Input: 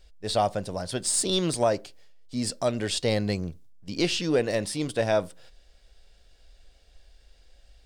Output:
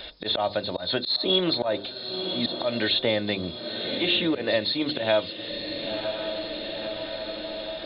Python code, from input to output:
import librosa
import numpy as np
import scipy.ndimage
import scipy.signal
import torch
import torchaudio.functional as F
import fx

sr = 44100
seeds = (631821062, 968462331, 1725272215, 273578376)

p1 = fx.freq_compress(x, sr, knee_hz=3300.0, ratio=4.0)
p2 = fx.highpass(p1, sr, hz=59.0, slope=6)
p3 = fx.low_shelf(p2, sr, hz=280.0, db=-7.5)
p4 = fx.hum_notches(p3, sr, base_hz=50, count=10)
p5 = p4 + 0.34 * np.pad(p4, (int(3.3 * sr / 1000.0), 0))[:len(p4)]
p6 = fx.auto_swell(p5, sr, attack_ms=148.0)
p7 = p6 + fx.echo_diffused(p6, sr, ms=1007, feedback_pct=52, wet_db=-15.0, dry=0)
p8 = fx.band_squash(p7, sr, depth_pct=70)
y = p8 * 10.0 ** (5.5 / 20.0)